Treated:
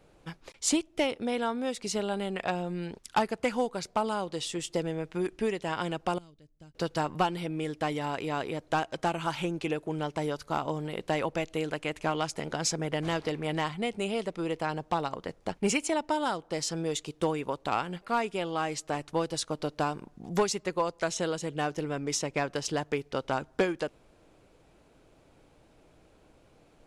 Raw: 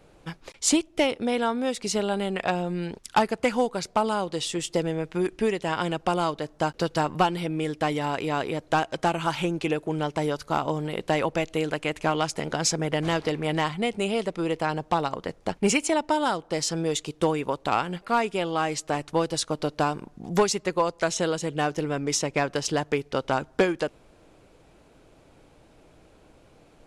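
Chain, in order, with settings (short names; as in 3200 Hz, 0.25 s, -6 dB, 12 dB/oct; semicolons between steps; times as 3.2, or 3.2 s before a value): 6.18–6.75 passive tone stack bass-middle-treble 10-0-1; gain -5 dB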